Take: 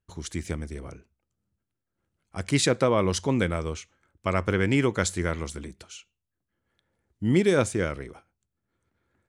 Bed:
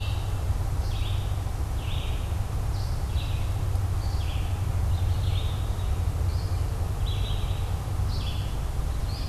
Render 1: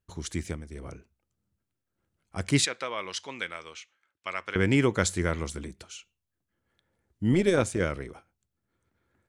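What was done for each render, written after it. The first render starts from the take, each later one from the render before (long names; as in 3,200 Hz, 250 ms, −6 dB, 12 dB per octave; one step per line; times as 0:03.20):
0:00.40–0:00.90: duck −9 dB, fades 0.25 s
0:02.65–0:04.56: resonant band-pass 2,800 Hz, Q 0.92
0:07.33–0:07.80: amplitude modulation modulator 180 Hz, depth 30%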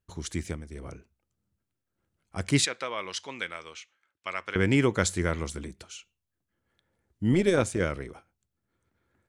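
no processing that can be heard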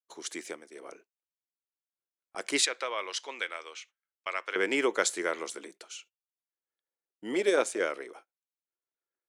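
high-pass filter 360 Hz 24 dB per octave
noise gate −53 dBFS, range −22 dB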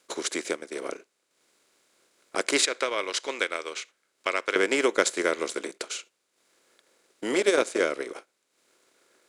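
compressor on every frequency bin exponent 0.6
transient designer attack +4 dB, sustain −9 dB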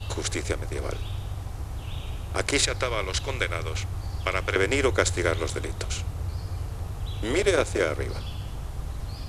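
mix in bed −5 dB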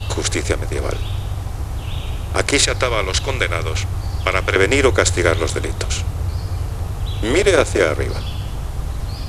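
level +9 dB
brickwall limiter −1 dBFS, peak gain reduction 3 dB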